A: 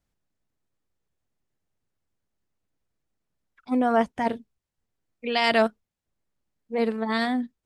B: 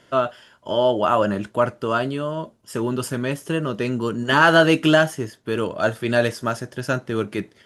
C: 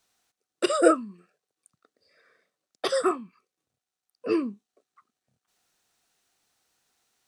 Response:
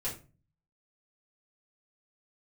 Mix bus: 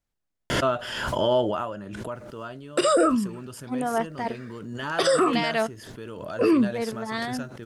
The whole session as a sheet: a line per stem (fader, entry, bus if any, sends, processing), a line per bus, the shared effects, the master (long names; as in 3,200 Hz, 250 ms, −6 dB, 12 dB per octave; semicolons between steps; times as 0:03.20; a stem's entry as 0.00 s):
−3.5 dB, 0.00 s, no send, low-shelf EQ 230 Hz −8 dB
0:01.42 −4 dB → 0:01.71 −16.5 dB, 0.50 s, no send, background raised ahead of every attack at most 35 dB per second
+3.0 dB, 2.15 s, no send, brickwall limiter −16 dBFS, peak gain reduction 9.5 dB; automatic gain control gain up to 10 dB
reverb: not used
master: low-shelf EQ 75 Hz +9.5 dB; brickwall limiter −12.5 dBFS, peak gain reduction 10 dB